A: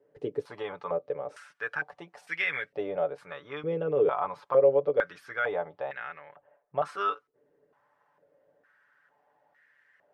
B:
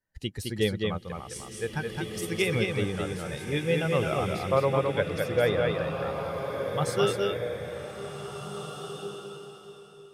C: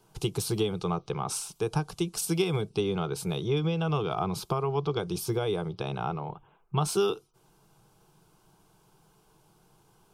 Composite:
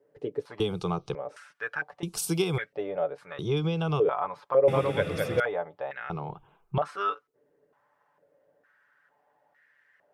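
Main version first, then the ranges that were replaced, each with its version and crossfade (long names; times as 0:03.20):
A
0:00.60–0:01.15: punch in from C
0:02.03–0:02.58: punch in from C
0:03.39–0:04.00: punch in from C
0:04.68–0:05.40: punch in from B
0:06.10–0:06.78: punch in from C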